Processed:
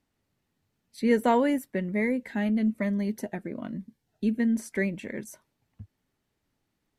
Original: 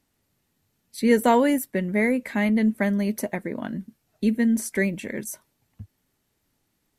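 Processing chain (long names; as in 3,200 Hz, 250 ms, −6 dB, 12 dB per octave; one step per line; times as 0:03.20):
high-shelf EQ 6,800 Hz −11.5 dB
0:01.89–0:04.40: phaser whose notches keep moving one way falling 1.1 Hz
level −4 dB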